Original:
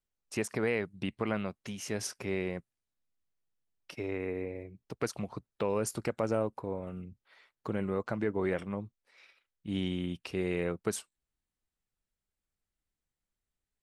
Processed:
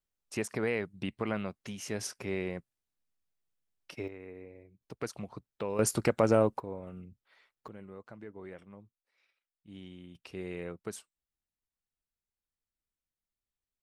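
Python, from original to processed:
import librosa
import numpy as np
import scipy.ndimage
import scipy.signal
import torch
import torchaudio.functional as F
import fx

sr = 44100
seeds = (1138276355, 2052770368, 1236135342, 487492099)

y = fx.gain(x, sr, db=fx.steps((0.0, -1.0), (4.08, -11.5), (4.81, -4.0), (5.79, 6.0), (6.6, -4.0), (7.68, -15.0), (10.15, -7.5)))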